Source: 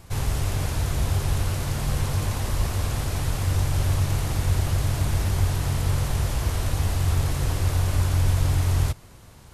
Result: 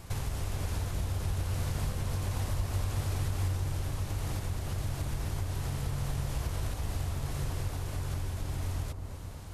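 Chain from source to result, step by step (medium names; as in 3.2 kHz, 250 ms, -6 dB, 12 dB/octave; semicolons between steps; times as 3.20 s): compression 6:1, threshold -31 dBFS, peak gain reduction 14.5 dB; on a send: feedback echo behind a low-pass 226 ms, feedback 69%, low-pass 990 Hz, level -7 dB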